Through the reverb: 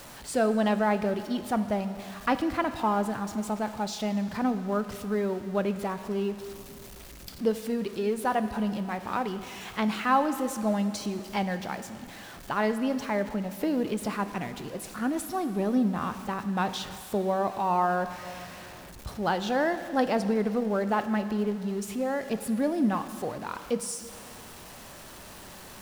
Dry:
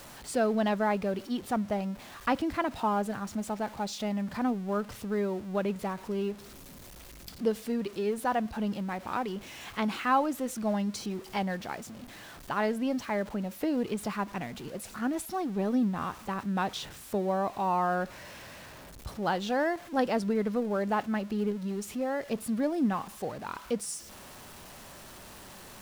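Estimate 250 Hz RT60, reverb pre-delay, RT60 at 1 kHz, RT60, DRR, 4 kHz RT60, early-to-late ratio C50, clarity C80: 2.5 s, 7 ms, 2.4 s, 2.4 s, 10.0 dB, 2.2 s, 11.5 dB, 12.0 dB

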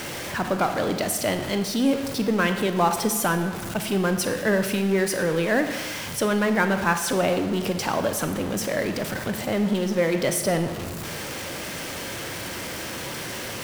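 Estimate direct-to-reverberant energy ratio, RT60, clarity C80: 7.0 dB, 1.4 s, 10.0 dB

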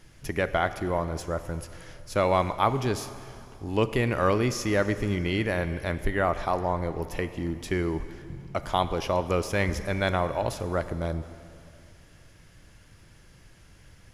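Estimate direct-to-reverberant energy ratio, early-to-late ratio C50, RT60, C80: 12.0 dB, 12.5 dB, 2.6 s, 13.0 dB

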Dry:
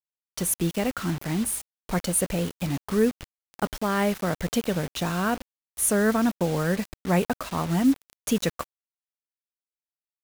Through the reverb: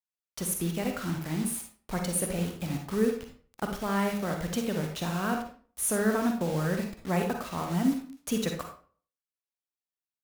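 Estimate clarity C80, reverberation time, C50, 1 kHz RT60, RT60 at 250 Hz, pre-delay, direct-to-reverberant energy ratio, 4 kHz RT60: 11.0 dB, 0.45 s, 5.0 dB, 0.40 s, 0.50 s, 40 ms, 3.0 dB, 0.30 s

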